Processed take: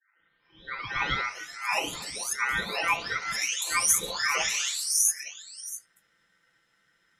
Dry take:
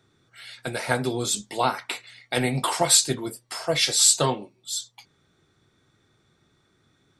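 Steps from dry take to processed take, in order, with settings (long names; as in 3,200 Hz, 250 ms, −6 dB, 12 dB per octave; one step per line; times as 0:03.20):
every frequency bin delayed by itself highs late, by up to 980 ms
feedback echo with a low-pass in the loop 62 ms, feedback 83%, low-pass 1,600 Hz, level −23 dB
ring modulation 1,700 Hz
level +1.5 dB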